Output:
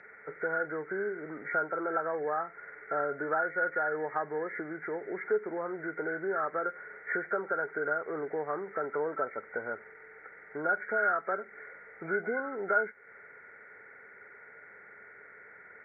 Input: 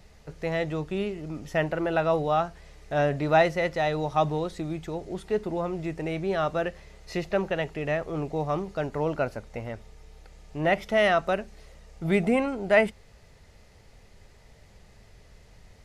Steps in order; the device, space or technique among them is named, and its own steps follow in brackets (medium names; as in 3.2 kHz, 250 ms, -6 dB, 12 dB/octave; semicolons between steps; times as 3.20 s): hearing aid with frequency lowering (knee-point frequency compression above 1.3 kHz 4:1; compression 3:1, threshold -33 dBFS, peak gain reduction 14.5 dB; cabinet simulation 350–5600 Hz, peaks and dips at 430 Hz +8 dB, 660 Hz -3 dB, 1.4 kHz +9 dB, 2.1 kHz +7 dB, 3.8 kHz +6 dB)